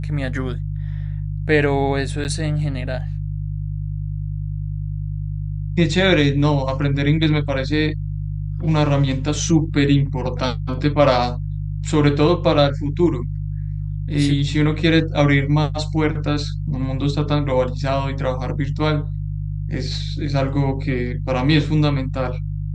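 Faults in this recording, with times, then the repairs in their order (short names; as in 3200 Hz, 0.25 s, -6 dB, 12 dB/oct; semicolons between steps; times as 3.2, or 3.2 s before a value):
hum 50 Hz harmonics 3 -25 dBFS
2.24–2.25 gap 9.4 ms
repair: de-hum 50 Hz, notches 3; interpolate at 2.24, 9.4 ms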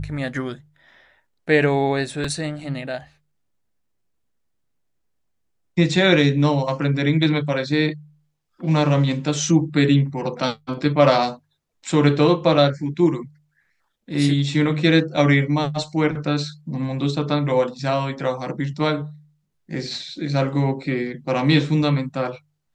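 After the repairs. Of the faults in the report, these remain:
none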